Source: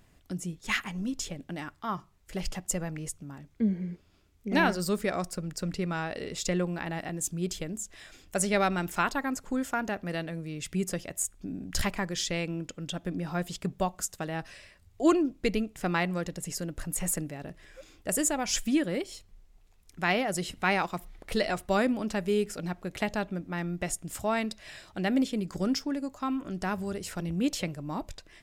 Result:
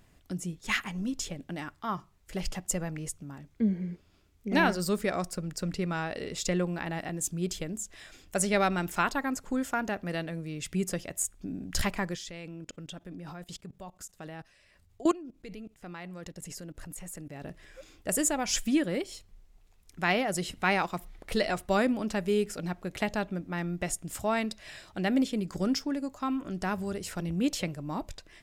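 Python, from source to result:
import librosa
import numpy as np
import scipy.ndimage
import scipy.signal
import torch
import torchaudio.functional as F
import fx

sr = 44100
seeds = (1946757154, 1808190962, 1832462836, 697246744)

y = fx.level_steps(x, sr, step_db=21, at=(12.15, 17.42))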